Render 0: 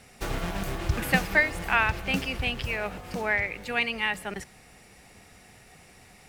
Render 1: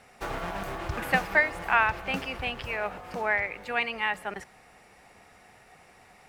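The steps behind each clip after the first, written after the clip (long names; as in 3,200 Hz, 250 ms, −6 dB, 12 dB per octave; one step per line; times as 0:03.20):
parametric band 960 Hz +11.5 dB 2.7 octaves
level −8.5 dB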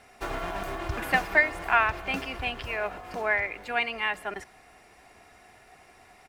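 comb filter 2.9 ms, depth 39%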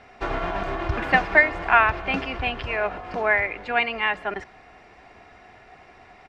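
high-frequency loss of the air 170 metres
level +6.5 dB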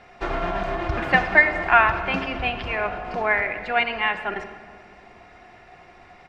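rectangular room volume 2,900 cubic metres, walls mixed, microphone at 0.89 metres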